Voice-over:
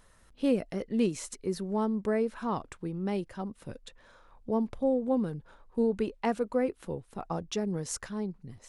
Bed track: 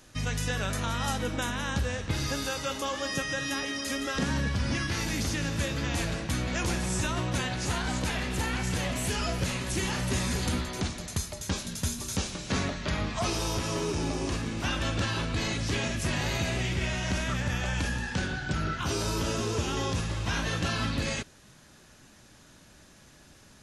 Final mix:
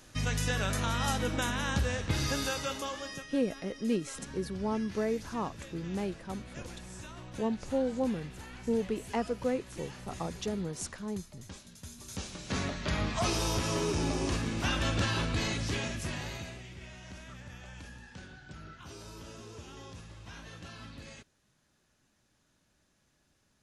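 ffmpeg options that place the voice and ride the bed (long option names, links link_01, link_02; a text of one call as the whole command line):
ffmpeg -i stem1.wav -i stem2.wav -filter_complex "[0:a]adelay=2900,volume=-3dB[link_01];[1:a]volume=15.5dB,afade=type=out:start_time=2.46:duration=0.84:silence=0.158489,afade=type=in:start_time=11.87:duration=1.21:silence=0.158489,afade=type=out:start_time=15.23:duration=1.39:silence=0.141254[link_02];[link_01][link_02]amix=inputs=2:normalize=0" out.wav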